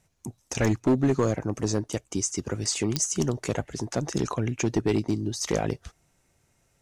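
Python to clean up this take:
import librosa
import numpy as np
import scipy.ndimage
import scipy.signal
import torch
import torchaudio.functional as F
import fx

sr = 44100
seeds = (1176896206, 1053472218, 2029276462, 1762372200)

y = fx.fix_declip(x, sr, threshold_db=-16.0)
y = fx.fix_declick_ar(y, sr, threshold=10.0)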